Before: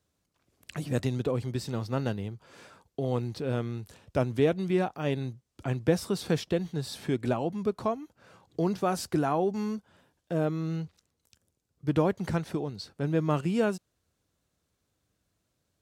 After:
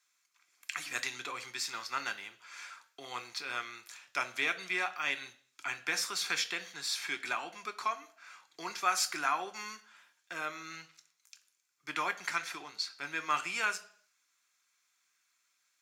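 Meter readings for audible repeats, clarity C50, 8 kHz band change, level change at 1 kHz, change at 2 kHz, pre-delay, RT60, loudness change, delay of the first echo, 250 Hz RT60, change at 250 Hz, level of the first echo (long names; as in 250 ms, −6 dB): no echo audible, 16.0 dB, +7.0 dB, 0.0 dB, +8.0 dB, 3 ms, 0.55 s, −5.0 dB, no echo audible, 0.55 s, −21.5 dB, no echo audible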